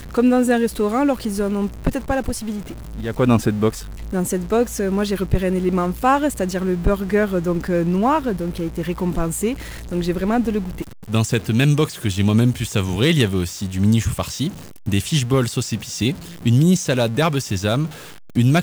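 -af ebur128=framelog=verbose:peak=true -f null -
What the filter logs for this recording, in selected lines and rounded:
Integrated loudness:
  I:         -20.1 LUFS
  Threshold: -30.3 LUFS
Loudness range:
  LRA:         2.7 LU
  Threshold: -40.5 LUFS
  LRA low:   -21.8 LUFS
  LRA high:  -19.1 LUFS
True peak:
  Peak:       -3.3 dBFS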